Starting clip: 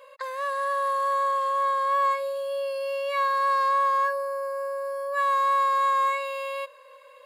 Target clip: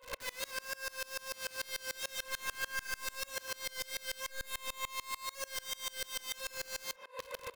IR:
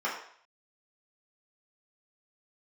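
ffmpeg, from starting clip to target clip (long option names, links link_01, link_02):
-filter_complex "[0:a]bandreject=frequency=60:width_type=h:width=6,bandreject=frequency=120:width_type=h:width=6,bandreject=frequency=180:width_type=h:width=6,bandreject=frequency=240:width_type=h:width=6,bandreject=frequency=300:width_type=h:width=6,bandreject=frequency=360:width_type=h:width=6,bandreject=frequency=420:width_type=h:width=6,bandreject=frequency=480:width_type=h:width=6,acompressor=threshold=-44dB:ratio=6,aeval=exprs='(mod(150*val(0)+1,2)-1)/150':channel_layout=same,asplit=2[link_01][link_02];[link_02]adelay=30,volume=-13dB[link_03];[link_01][link_03]amix=inputs=2:normalize=0,asetrate=42336,aresample=44100,asplit=2[link_04][link_05];[1:a]atrim=start_sample=2205,highshelf=frequency=5500:gain=-10.5,adelay=110[link_06];[link_05][link_06]afir=irnorm=-1:irlink=0,volume=-16dB[link_07];[link_04][link_07]amix=inputs=2:normalize=0,aeval=exprs='val(0)*pow(10,-27*if(lt(mod(-6.8*n/s,1),2*abs(-6.8)/1000),1-mod(-6.8*n/s,1)/(2*abs(-6.8)/1000),(mod(-6.8*n/s,1)-2*abs(-6.8)/1000)/(1-2*abs(-6.8)/1000))/20)':channel_layout=same,volume=13.5dB"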